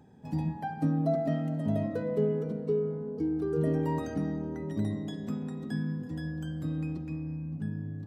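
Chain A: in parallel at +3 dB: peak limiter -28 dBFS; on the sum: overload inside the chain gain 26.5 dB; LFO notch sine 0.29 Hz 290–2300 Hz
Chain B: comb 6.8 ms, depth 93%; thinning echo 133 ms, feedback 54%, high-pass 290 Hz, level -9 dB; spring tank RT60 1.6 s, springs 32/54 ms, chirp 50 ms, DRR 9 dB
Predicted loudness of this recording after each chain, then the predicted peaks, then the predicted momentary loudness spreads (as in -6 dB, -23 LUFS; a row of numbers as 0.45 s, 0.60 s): -31.0 LUFS, -26.0 LUFS; -22.0 dBFS, -10.5 dBFS; 3 LU, 8 LU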